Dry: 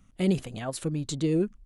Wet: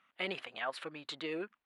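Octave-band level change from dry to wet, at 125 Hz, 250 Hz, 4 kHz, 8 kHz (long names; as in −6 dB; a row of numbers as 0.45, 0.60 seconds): −26.5, −18.0, −1.5, −20.0 decibels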